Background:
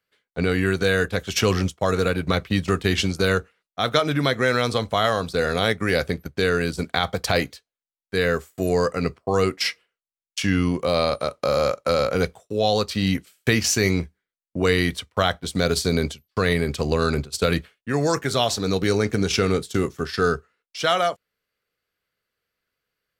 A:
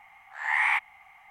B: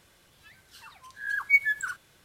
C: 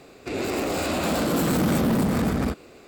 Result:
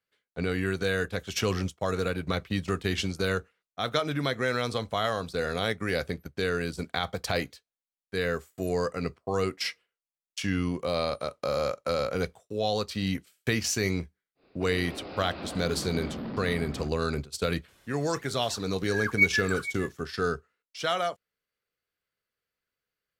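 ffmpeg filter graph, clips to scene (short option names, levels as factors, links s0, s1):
-filter_complex "[0:a]volume=0.422[s0];[3:a]aresample=11025,aresample=44100[s1];[2:a]aecho=1:1:461:0.211[s2];[s1]atrim=end=2.87,asetpts=PTS-STARTPTS,volume=0.188,afade=t=in:d=0.1,afade=t=out:st=2.77:d=0.1,adelay=14350[s3];[s2]atrim=end=2.24,asetpts=PTS-STARTPTS,volume=0.891,afade=t=in:d=0.004:c=hsin,afade=t=out:st=2.236:d=0.004:c=hsin,adelay=17680[s4];[s0][s3][s4]amix=inputs=3:normalize=0"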